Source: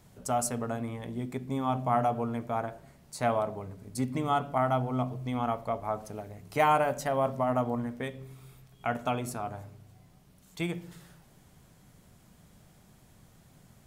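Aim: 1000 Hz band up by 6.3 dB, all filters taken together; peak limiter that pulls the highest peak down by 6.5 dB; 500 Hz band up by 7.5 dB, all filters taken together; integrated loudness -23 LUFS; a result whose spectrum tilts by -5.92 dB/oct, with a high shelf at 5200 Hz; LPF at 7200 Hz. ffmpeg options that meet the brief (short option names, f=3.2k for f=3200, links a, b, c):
-af "lowpass=7.2k,equalizer=f=500:t=o:g=8,equalizer=f=1k:t=o:g=5,highshelf=f=5.2k:g=4,volume=4dB,alimiter=limit=-9.5dB:level=0:latency=1"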